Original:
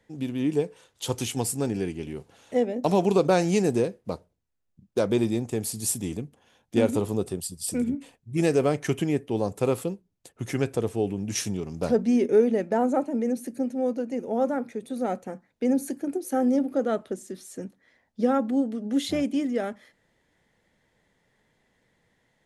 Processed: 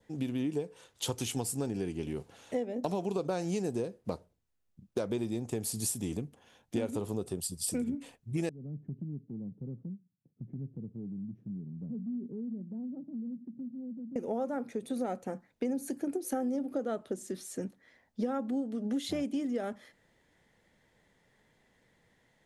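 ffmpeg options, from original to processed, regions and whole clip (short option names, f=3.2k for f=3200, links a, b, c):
-filter_complex "[0:a]asettb=1/sr,asplit=3[a][b][c];[a]atrim=end=8.494[d];[b]atrim=start=8.49:end=14.16,asetpts=PTS-STARTPTS,afade=t=in:d=0.004:c=qsin,afade=t=out:st=5.666:d=0.004:c=qsin,asuperpass=centerf=170:order=4:qfactor=1.6,acompressor=threshold=-42dB:ratio=2:attack=3.2:release=140:knee=1:detection=peak[e];[c]atrim=start=14.156[f];[d][e]acrossfade=d=0.004:c1=hsin:c2=qsin[g];[g][f]acrossfade=d=0.004:c1=qsin:c2=hsin,adynamicequalizer=threshold=0.00282:dfrequency=2100:dqfactor=2:tfrequency=2100:tqfactor=2:attack=5:release=100:ratio=0.375:range=2.5:mode=cutabove:tftype=bell,acompressor=threshold=-30dB:ratio=6"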